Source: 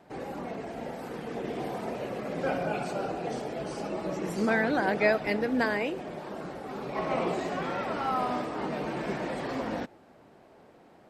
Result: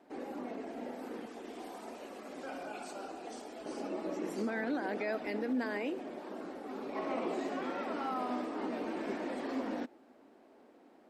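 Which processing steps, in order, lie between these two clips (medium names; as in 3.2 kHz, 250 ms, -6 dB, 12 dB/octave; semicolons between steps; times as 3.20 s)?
resonant low shelf 190 Hz -10 dB, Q 3; peak limiter -19.5 dBFS, peak gain reduction 9.5 dB; 1.26–3.66 s: graphic EQ 125/250/500/2000/8000 Hz -9/-6/-7/-4/+5 dB; trim -7 dB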